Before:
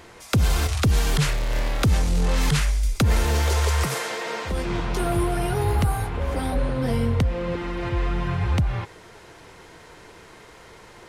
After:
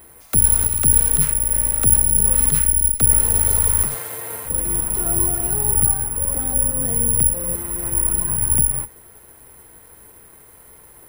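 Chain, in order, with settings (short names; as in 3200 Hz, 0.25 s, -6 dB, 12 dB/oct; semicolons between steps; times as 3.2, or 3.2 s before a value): octaver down 2 oct, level +1 dB; high shelf 3900 Hz -12 dB; careless resampling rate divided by 4×, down none, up zero stuff; gain -5.5 dB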